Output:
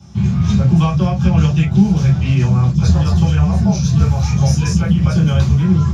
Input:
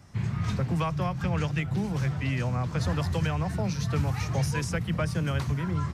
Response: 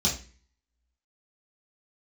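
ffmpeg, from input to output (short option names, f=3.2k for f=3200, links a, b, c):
-filter_complex "[0:a]asettb=1/sr,asplit=3[a][b][c];[a]atrim=end=2.714[d];[b]atrim=start=2.71:end=5.11,asetpts=PTS-STARTPTS,afade=t=in:d=0.004:c=qsin,afade=t=out:st=2.396:d=0.004:c=qsin,acrossover=split=300|2700[e][f][g];[g]adelay=30[h];[f]adelay=70[i];[e][i][h]amix=inputs=3:normalize=0,atrim=end_sample=105840[j];[c]atrim=start=5.106[k];[d][j]acrossfade=d=0.004:c1=hsin:c2=qsin[l];[l][k]acrossfade=d=0.004:c1=qsin:c2=hsin[m];[1:a]atrim=start_sample=2205,atrim=end_sample=3087[n];[m][n]afir=irnorm=-1:irlink=0,volume=-2.5dB"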